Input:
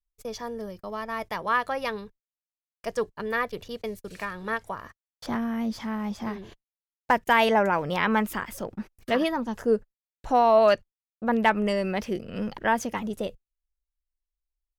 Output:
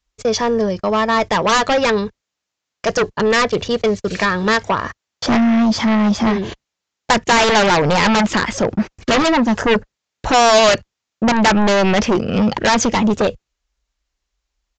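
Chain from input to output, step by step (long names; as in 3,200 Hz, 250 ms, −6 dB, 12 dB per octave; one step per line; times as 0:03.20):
high-pass filter 51 Hz
in parallel at −11.5 dB: sine wavefolder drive 19 dB, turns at −8.5 dBFS
on the sum: downsampling to 16,000 Hz
level +6 dB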